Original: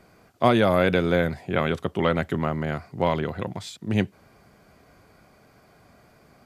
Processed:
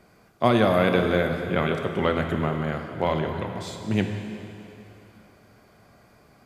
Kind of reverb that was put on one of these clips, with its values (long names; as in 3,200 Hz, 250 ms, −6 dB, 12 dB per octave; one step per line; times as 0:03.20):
dense smooth reverb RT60 2.9 s, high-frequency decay 0.95×, DRR 4 dB
level −1.5 dB